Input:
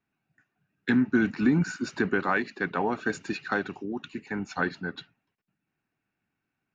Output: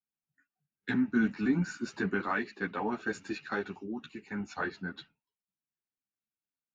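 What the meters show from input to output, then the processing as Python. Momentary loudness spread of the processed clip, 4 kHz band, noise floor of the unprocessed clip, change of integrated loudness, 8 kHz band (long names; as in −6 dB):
12 LU, −5.5 dB, −84 dBFS, −5.0 dB, can't be measured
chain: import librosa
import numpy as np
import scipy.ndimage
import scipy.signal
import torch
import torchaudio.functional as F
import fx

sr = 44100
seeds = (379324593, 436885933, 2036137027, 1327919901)

y = fx.noise_reduce_blind(x, sr, reduce_db=17)
y = fx.ensemble(y, sr)
y = y * 10.0 ** (-2.5 / 20.0)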